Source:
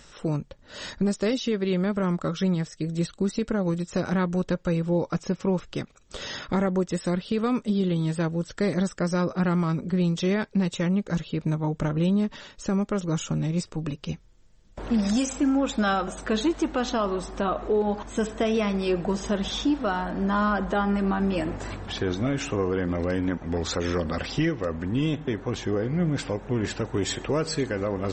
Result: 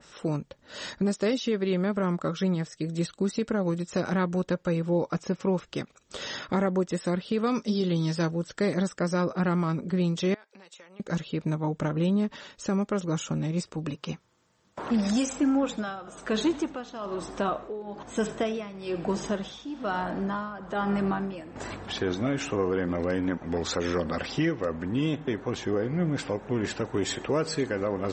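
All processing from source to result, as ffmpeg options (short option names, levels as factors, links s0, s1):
-filter_complex "[0:a]asettb=1/sr,asplit=3[s0][s1][s2];[s0]atrim=end=7.474[s3];[s1]atrim=start=7.47:end=8.31,asetpts=PTS-STARTPTS,afade=t=in:d=0.004:c=qsin,afade=t=out:st=0.836:d=0.004:c=qsin,lowpass=f=5500:t=q:w=9.2,asplit=2[s4][s5];[s5]adelay=18,volume=0.224[s6];[s4][s6]amix=inputs=2:normalize=0,atrim=end_sample=37044[s7];[s2]atrim=start=8.306[s8];[s3][s7]acrossfade=d=0.004:c1=hsin:c2=qsin[s9];[s9][s8]acrossfade=d=0.004:c1=qsin:c2=hsin,asettb=1/sr,asplit=3[s10][s11][s12];[s10]atrim=end=10.344[s13];[s11]atrim=start=10.34:end=11,asetpts=PTS-STARTPTS,afade=t=in:d=0.004:c=qsin,afade=t=out:st=0.656:d=0.004:c=qsin,highpass=620,acompressor=threshold=0.00501:ratio=8:attack=3.2:release=140:knee=1:detection=peak[s14];[s12]atrim=start=10.996[s15];[s13][s14]acrossfade=d=0.004:c1=hsin:c2=qsin[s16];[s16][s15]acrossfade=d=0.004:c1=qsin:c2=hsin,asettb=1/sr,asplit=3[s17][s18][s19];[s17]atrim=end=13.944[s20];[s18]atrim=start=13.94:end=14.91,asetpts=PTS-STARTPTS,afade=t=in:d=0.004:c=qsin,afade=t=out:st=0.966:d=0.004:c=qsin,highpass=100,equalizer=f=1100:t=o:w=0.97:g=8.5[s21];[s19]atrim=start=14.906[s22];[s20][s21]acrossfade=d=0.004:c1=hsin:c2=qsin[s23];[s23][s22]acrossfade=d=0.004:c1=qsin:c2=hsin,asettb=1/sr,asplit=3[s24][s25][s26];[s24]atrim=end=15.544[s27];[s25]atrim=start=15.54:end=21.56,asetpts=PTS-STARTPTS,afade=t=in:d=0.004:c=qsin,afade=t=out:st=6.016:d=0.004:c=qsin,asplit=6[s28][s29][s30][s31][s32][s33];[s29]adelay=82,afreqshift=-48,volume=0.15[s34];[s30]adelay=164,afreqshift=-96,volume=0.0767[s35];[s31]adelay=246,afreqshift=-144,volume=0.0389[s36];[s32]adelay=328,afreqshift=-192,volume=0.02[s37];[s33]adelay=410,afreqshift=-240,volume=0.0101[s38];[s28][s34][s35][s36][s37][s38]amix=inputs=6:normalize=0,atrim=end_sample=265482,tremolo=f=1.1:d=0.8[s39];[s26]atrim=start=21.556[s40];[s27][s39]acrossfade=d=0.004:c1=hsin:c2=qsin[s41];[s41][s40]acrossfade=d=0.004:c1=qsin:c2=hsin,highpass=f=160:p=1,adynamicequalizer=threshold=0.00708:dfrequency=2300:dqfactor=0.7:tfrequency=2300:tqfactor=0.7:attack=5:release=100:ratio=0.375:range=1.5:mode=cutabove:tftype=highshelf"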